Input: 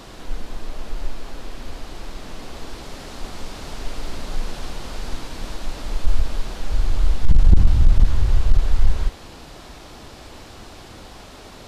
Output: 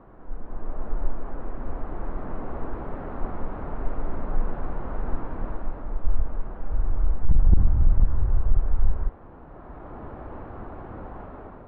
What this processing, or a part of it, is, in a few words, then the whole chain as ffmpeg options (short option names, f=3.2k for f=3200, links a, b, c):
action camera in a waterproof case: -af "lowpass=f=1.4k:w=0.5412,lowpass=f=1.4k:w=1.3066,dynaudnorm=f=220:g=5:m=12dB,volume=-8.5dB" -ar 32000 -c:a aac -b:a 48k